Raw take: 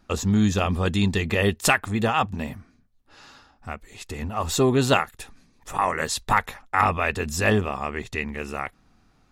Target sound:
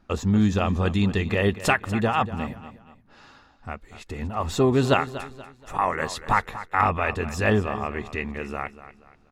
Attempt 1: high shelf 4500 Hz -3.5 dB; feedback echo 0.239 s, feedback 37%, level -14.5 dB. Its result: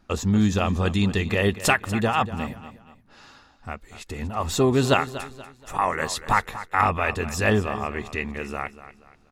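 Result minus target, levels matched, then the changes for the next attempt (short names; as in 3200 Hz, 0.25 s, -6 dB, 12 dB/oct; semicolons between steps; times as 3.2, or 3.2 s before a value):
8000 Hz band +5.5 dB
change: high shelf 4500 Hz -12 dB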